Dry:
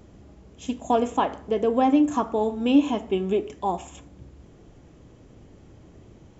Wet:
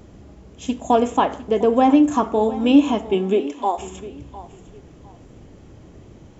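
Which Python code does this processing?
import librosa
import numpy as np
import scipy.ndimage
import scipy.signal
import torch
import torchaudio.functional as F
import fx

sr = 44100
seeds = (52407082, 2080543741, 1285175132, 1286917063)

y = fx.highpass(x, sr, hz=fx.line((3.13, 120.0), (3.77, 450.0)), slope=24, at=(3.13, 3.77), fade=0.02)
y = fx.echo_feedback(y, sr, ms=705, feedback_pct=26, wet_db=-17.0)
y = y * 10.0 ** (5.0 / 20.0)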